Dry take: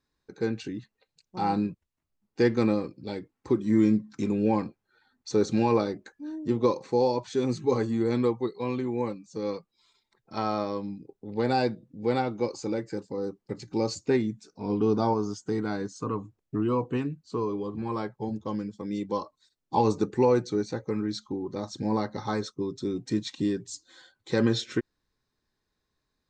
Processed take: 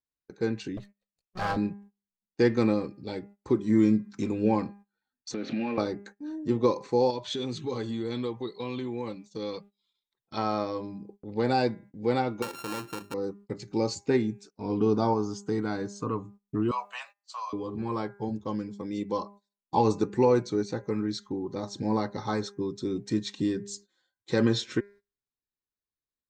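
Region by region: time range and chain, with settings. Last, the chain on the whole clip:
0:00.77–0:01.57: lower of the sound and its delayed copy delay 1.6 ms + highs frequency-modulated by the lows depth 0.16 ms
0:05.34–0:05.78: converter with a step at zero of −36 dBFS + downward compressor 5 to 1, threshold −26 dBFS + loudspeaker in its box 220–3,800 Hz, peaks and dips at 250 Hz +9 dB, 420 Hz −9 dB, 590 Hz +4 dB, 970 Hz −9 dB, 1,800 Hz +5 dB, 2,500 Hz +7 dB
0:07.10–0:10.37: downward compressor 2.5 to 1, threshold −31 dBFS + parametric band 3,400 Hz +13.5 dB 0.55 octaves
0:12.42–0:13.14: samples sorted by size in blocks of 32 samples + mains-hum notches 50/100/150/200/250/300/350 Hz + downward compressor 2.5 to 1, threshold −32 dBFS
0:16.71–0:17.53: Butterworth high-pass 580 Hz 96 dB per octave + high-shelf EQ 2,100 Hz +7 dB + double-tracking delay 15 ms −10 dB
whole clip: hum removal 202 Hz, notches 13; noise gate −48 dBFS, range −21 dB

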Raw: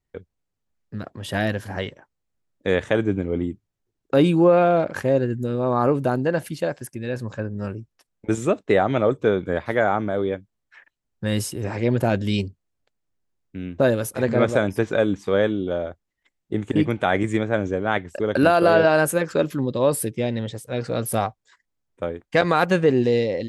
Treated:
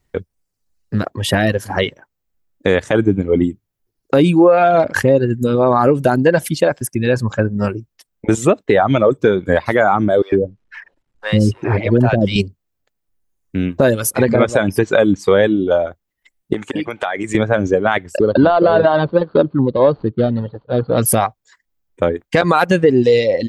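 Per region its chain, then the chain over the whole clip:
0:10.22–0:12.36: mu-law and A-law mismatch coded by mu + head-to-tape spacing loss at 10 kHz 22 dB + multiband delay without the direct sound highs, lows 100 ms, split 650 Hz
0:16.53–0:17.35: high-pass filter 560 Hz 6 dB per octave + high-shelf EQ 7,100 Hz −5.5 dB + downward compressor 4 to 1, threshold −31 dBFS
0:18.21–0:20.98: running median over 25 samples + Chebyshev low-pass with heavy ripple 4,500 Hz, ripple 3 dB + parametric band 2,400 Hz −12.5 dB 0.99 octaves
whole clip: reverb reduction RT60 1.4 s; downward compressor 4 to 1, threshold −22 dBFS; boost into a limiter +15 dB; level −1 dB

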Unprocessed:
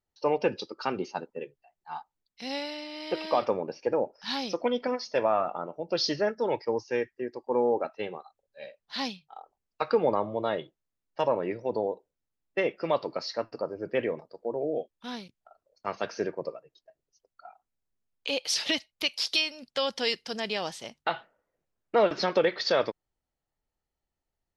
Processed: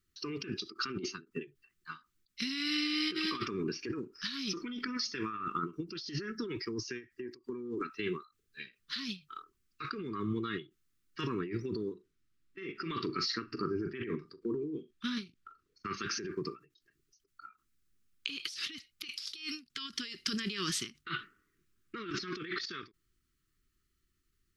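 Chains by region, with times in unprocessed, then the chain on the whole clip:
0:11.93–0:15.94: high-shelf EQ 7,800 Hz −11.5 dB + double-tracking delay 41 ms −13 dB
whole clip: elliptic band-stop filter 380–1,200 Hz, stop band 40 dB; compressor whose output falls as the input rises −41 dBFS, ratio −1; every ending faded ahead of time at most 230 dB per second; level +4 dB

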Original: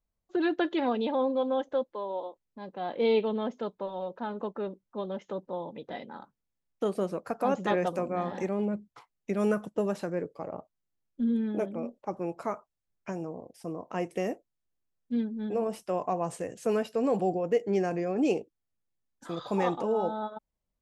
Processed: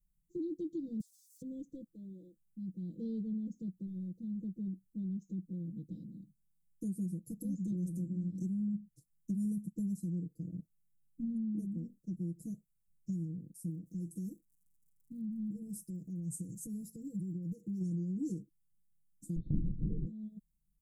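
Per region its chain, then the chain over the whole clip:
0:01.00–0:01.42: leveller curve on the samples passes 3 + Chebyshev high-pass with heavy ripple 1,600 Hz, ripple 6 dB + downward compressor, threshold −46 dBFS
0:13.69–0:17.80: downward compressor 3 to 1, threshold −35 dBFS + surface crackle 80 per second −60 dBFS
0:19.36–0:20.06: low-shelf EQ 470 Hz +8.5 dB + comb filter 4.3 ms, depth 66% + linear-prediction vocoder at 8 kHz whisper
whole clip: inverse Chebyshev band-stop filter 860–2,300 Hz, stop band 80 dB; comb filter 6.1 ms, depth 96%; downward compressor 2.5 to 1, threshold −40 dBFS; level +3.5 dB

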